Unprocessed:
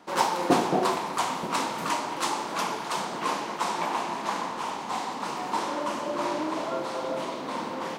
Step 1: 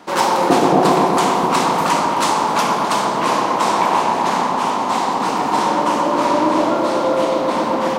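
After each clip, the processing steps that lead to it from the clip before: in parallel at +2.5 dB: limiter -19.5 dBFS, peak gain reduction 11 dB; on the sum: analogue delay 0.125 s, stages 1024, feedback 80%, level -3 dB; gain +3 dB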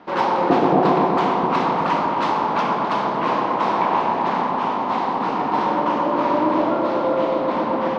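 air absorption 290 m; gain -2 dB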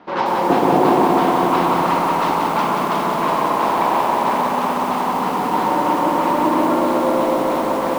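lo-fi delay 0.182 s, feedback 80%, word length 6-bit, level -4 dB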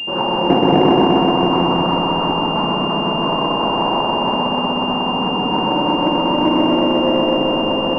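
tilt -2.5 dB/oct; pulse-width modulation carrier 2800 Hz; gain -1 dB

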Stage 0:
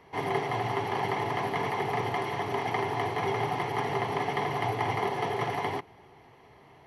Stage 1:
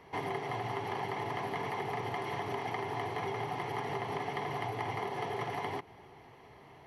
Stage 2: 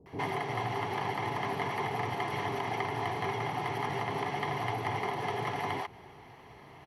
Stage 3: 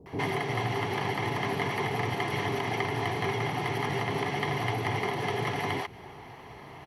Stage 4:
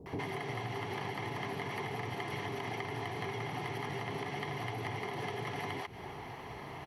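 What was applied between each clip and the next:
compressor, threshold -33 dBFS, peak gain reduction 9.5 dB
bands offset in time lows, highs 60 ms, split 490 Hz; gain +4 dB
dynamic EQ 900 Hz, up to -6 dB, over -47 dBFS, Q 1.1; gain +6 dB
compressor 10:1, threshold -36 dBFS, peak gain reduction 12 dB; gain +1 dB

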